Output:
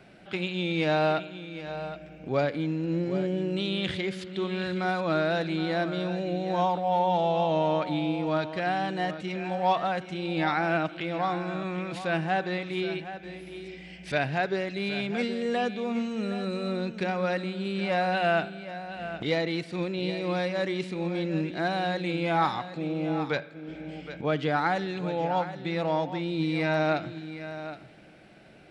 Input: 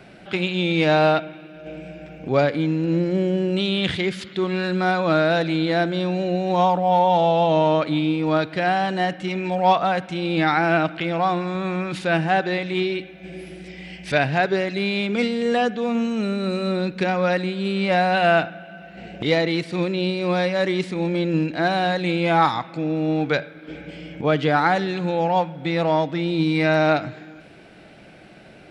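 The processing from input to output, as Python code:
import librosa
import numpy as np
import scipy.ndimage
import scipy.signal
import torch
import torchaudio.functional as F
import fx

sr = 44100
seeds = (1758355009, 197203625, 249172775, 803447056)

y = x + 10.0 ** (-12.0 / 20.0) * np.pad(x, (int(769 * sr / 1000.0), 0))[:len(x)]
y = y * 10.0 ** (-7.5 / 20.0)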